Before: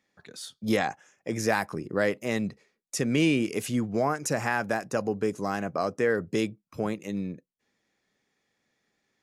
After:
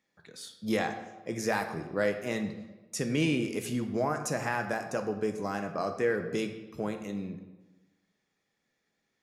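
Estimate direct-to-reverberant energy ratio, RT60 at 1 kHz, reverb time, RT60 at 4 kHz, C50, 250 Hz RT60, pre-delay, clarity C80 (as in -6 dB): 6.0 dB, 1.1 s, 1.2 s, 0.85 s, 9.0 dB, 1.2 s, 5 ms, 10.5 dB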